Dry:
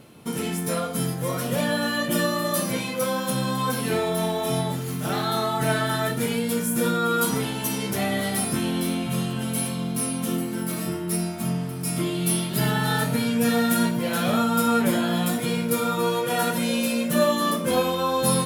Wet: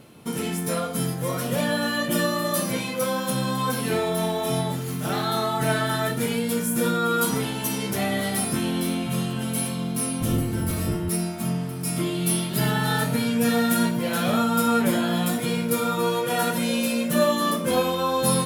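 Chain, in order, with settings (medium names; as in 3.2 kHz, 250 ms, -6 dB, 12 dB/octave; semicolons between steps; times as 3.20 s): 10.20–11.09 s: octave divider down 1 oct, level +2 dB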